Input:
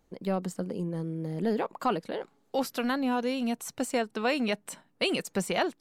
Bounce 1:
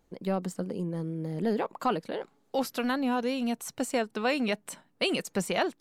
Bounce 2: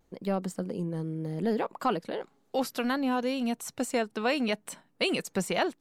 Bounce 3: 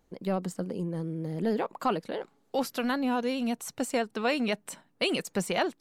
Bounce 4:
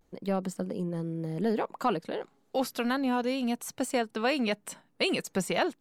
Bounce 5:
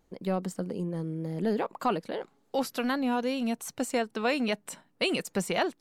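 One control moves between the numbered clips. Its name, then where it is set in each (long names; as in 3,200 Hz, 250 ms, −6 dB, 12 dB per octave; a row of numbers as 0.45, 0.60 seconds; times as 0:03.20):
pitch vibrato, speed: 6.4, 0.71, 14, 0.32, 2.5 Hertz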